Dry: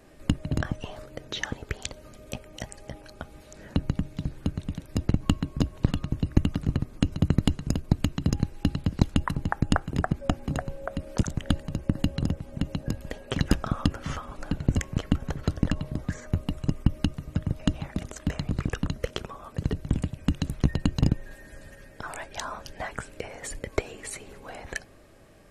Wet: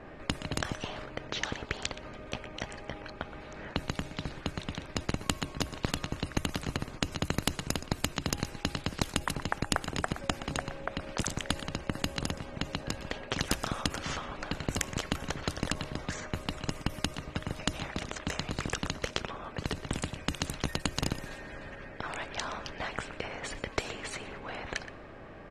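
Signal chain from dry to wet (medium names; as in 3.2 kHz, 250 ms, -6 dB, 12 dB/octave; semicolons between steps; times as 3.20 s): delay 121 ms -19.5 dB; level-controlled noise filter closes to 2 kHz, open at -20.5 dBFS; spectrum-flattening compressor 2:1; trim -1.5 dB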